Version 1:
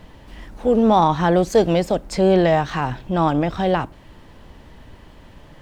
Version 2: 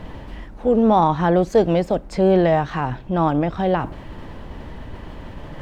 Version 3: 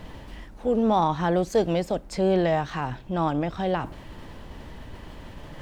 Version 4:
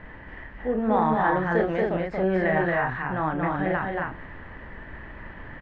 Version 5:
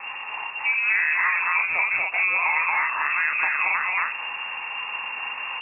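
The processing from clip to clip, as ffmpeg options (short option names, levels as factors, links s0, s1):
-af "highshelf=f=3400:g=-11,areverse,acompressor=mode=upward:threshold=0.0708:ratio=2.5,areverse"
-af "highshelf=f=3500:g=10.5,volume=0.473"
-af "lowpass=f=1800:t=q:w=4.4,aecho=1:1:32.07|230.3|271.1:0.501|0.708|0.631,volume=0.596"
-filter_complex "[0:a]lowpass=f=2400:t=q:w=0.5098,lowpass=f=2400:t=q:w=0.6013,lowpass=f=2400:t=q:w=0.9,lowpass=f=2400:t=q:w=2.563,afreqshift=-2800,acrossover=split=750|1600[s0][s1][s2];[s0]acompressor=threshold=0.00447:ratio=4[s3];[s1]acompressor=threshold=0.0178:ratio=4[s4];[s2]acompressor=threshold=0.02:ratio=4[s5];[s3][s4][s5]amix=inputs=3:normalize=0,volume=2.66"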